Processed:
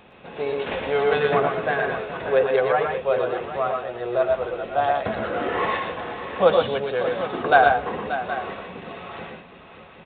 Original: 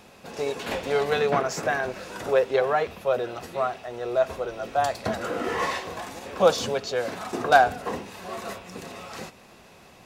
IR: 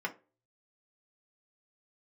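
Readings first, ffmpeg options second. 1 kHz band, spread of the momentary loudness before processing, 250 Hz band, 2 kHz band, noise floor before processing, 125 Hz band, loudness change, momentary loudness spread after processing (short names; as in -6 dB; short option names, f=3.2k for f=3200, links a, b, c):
+3.0 dB, 15 LU, +2.0 dB, +3.5 dB, -51 dBFS, +2.5 dB, +3.0 dB, 16 LU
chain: -filter_complex "[0:a]asplit=2[a][b];[1:a]atrim=start_sample=2205[c];[b][c]afir=irnorm=-1:irlink=0,volume=-18dB[d];[a][d]amix=inputs=2:normalize=0,aresample=8000,aresample=44100,aecho=1:1:108|122|583|770:0.398|0.562|0.266|0.224"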